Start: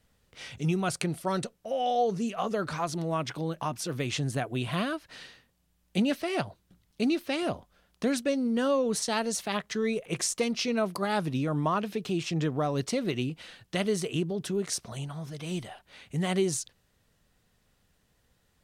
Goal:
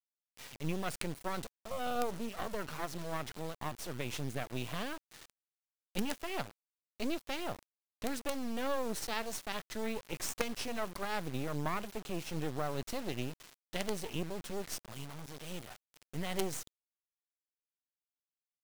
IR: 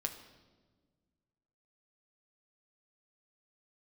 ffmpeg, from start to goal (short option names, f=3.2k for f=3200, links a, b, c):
-af "acrusher=bits=4:dc=4:mix=0:aa=0.000001,volume=-5dB"